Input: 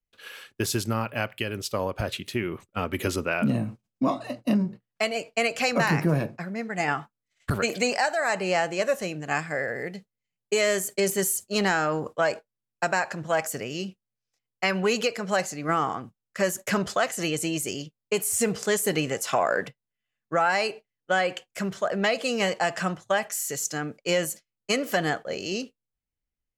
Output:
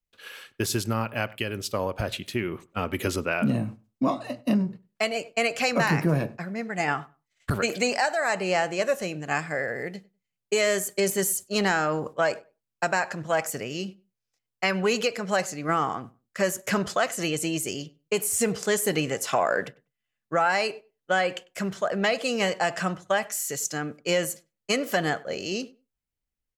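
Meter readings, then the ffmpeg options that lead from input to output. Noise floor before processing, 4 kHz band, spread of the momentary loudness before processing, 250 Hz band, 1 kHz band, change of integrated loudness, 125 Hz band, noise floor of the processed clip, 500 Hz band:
below −85 dBFS, 0.0 dB, 9 LU, 0.0 dB, 0.0 dB, 0.0 dB, 0.0 dB, −85 dBFS, 0.0 dB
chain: -filter_complex "[0:a]asplit=2[link_01][link_02];[link_02]adelay=98,lowpass=frequency=2000:poles=1,volume=-21.5dB,asplit=2[link_03][link_04];[link_04]adelay=98,lowpass=frequency=2000:poles=1,volume=0.17[link_05];[link_01][link_03][link_05]amix=inputs=3:normalize=0"

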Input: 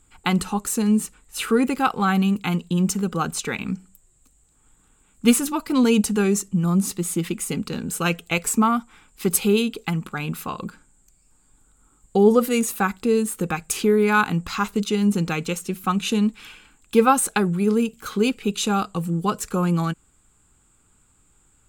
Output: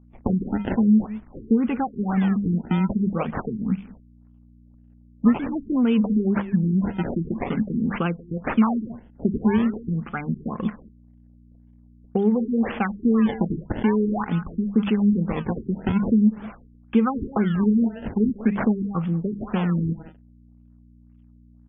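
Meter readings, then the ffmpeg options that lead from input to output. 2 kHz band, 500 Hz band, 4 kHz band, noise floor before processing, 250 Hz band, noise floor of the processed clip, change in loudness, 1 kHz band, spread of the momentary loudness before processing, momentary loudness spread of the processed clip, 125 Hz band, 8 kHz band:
−8.0 dB, −6.0 dB, below −10 dB, −61 dBFS, +1.5 dB, −52 dBFS, −1.5 dB, −6.5 dB, 10 LU, 9 LU, +0.5 dB, below −40 dB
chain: -filter_complex "[0:a]acrusher=bits=8:mix=0:aa=0.000001,bandreject=frequency=50:width_type=h:width=6,bandreject=frequency=100:width_type=h:width=6,bandreject=frequency=150:width_type=h:width=6,bandreject=frequency=200:width_type=h:width=6,asplit=2[link_01][link_02];[link_02]adelay=190,highpass=300,lowpass=3400,asoftclip=type=hard:threshold=-13dB,volume=-17dB[link_03];[link_01][link_03]amix=inputs=2:normalize=0,aphaser=in_gain=1:out_gain=1:delay=1.9:decay=0.31:speed=0.75:type=triangular,acrusher=samples=22:mix=1:aa=0.000001:lfo=1:lforange=35.2:lforate=0.46,agate=range=-21dB:threshold=-48dB:ratio=16:detection=peak,aeval=exprs='val(0)+0.00282*(sin(2*PI*60*n/s)+sin(2*PI*2*60*n/s)/2+sin(2*PI*3*60*n/s)/3+sin(2*PI*4*60*n/s)/4+sin(2*PI*5*60*n/s)/5)':channel_layout=same,acompressor=threshold=-21dB:ratio=5,equalizer=frequency=220:width_type=o:width=0.36:gain=9,afftfilt=real='re*lt(b*sr/1024,420*pow(3600/420,0.5+0.5*sin(2*PI*1.9*pts/sr)))':imag='im*lt(b*sr/1024,420*pow(3600/420,0.5+0.5*sin(2*PI*1.9*pts/sr)))':win_size=1024:overlap=0.75"

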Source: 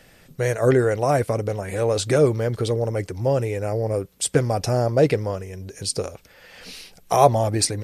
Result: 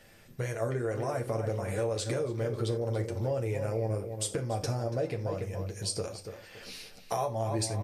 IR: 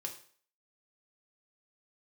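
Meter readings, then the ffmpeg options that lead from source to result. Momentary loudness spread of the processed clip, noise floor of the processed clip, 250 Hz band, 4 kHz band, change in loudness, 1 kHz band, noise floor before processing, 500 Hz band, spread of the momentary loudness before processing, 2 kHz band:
11 LU, −53 dBFS, −11.0 dB, −9.5 dB, −11.0 dB, −13.5 dB, −53 dBFS, −11.5 dB, 12 LU, −11.5 dB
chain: -filter_complex "[0:a]asplit=2[link_01][link_02];[link_02]adelay=284,lowpass=frequency=3900:poles=1,volume=-11dB,asplit=2[link_03][link_04];[link_04]adelay=284,lowpass=frequency=3900:poles=1,volume=0.31,asplit=2[link_05][link_06];[link_06]adelay=284,lowpass=frequency=3900:poles=1,volume=0.31[link_07];[link_03][link_05][link_07]amix=inputs=3:normalize=0[link_08];[link_01][link_08]amix=inputs=2:normalize=0,acompressor=threshold=-23dB:ratio=10,asplit=2[link_09][link_10];[1:a]atrim=start_sample=2205,atrim=end_sample=3969,adelay=9[link_11];[link_10][link_11]afir=irnorm=-1:irlink=0,volume=-1.5dB[link_12];[link_09][link_12]amix=inputs=2:normalize=0,volume=-7dB"

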